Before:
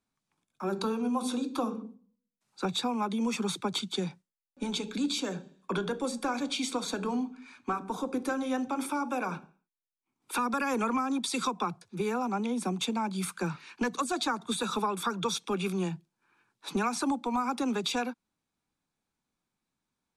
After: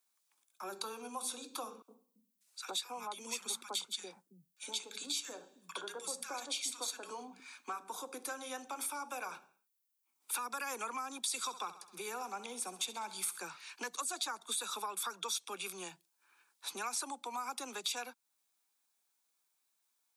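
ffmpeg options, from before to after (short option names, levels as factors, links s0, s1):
-filter_complex "[0:a]asettb=1/sr,asplit=3[s0][s1][s2];[s0]atrim=end=1.824[s3];[s1]atrim=start=1.82:end=7.4,asetpts=PTS-STARTPTS,afade=t=in:d=0.004:c=qsin,afade=t=out:st=5.576:d=0.004:c=qsin,acrossover=split=180|1400[s4][s5][s6];[s5]adelay=60[s7];[s4]adelay=330[s8];[s8][s7][s6]amix=inputs=3:normalize=0,atrim=end_sample=246078[s9];[s2]atrim=start=7.396[s10];[s3][s9]acrossfade=d=0.004:c1=hsin:c2=qsin[s11];[s11][s10]acrossfade=d=0.004:c1=qsin:c2=hsin,asettb=1/sr,asplit=3[s12][s13][s14];[s12]atrim=end=11.394[s15];[s13]atrim=start=11.39:end=13.4,asetpts=PTS-STARTPTS,afade=t=in:d=0.004:c=qsin,afade=t=out:st=2.006:d=0.004:c=qsin,aecho=1:1:66|132|198|264|330:0.188|0.0998|0.0529|0.028|0.0149,atrim=end_sample=88641[s16];[s14]atrim=start=13.396[s17];[s15][s16]acrossfade=d=0.004:c1=hsin:c2=qsin[s18];[s18][s17]acrossfade=d=0.004:c1=qsin:c2=hsin,highpass=550,aemphasis=mode=production:type=75kf,acompressor=threshold=0.00447:ratio=1.5,volume=0.75"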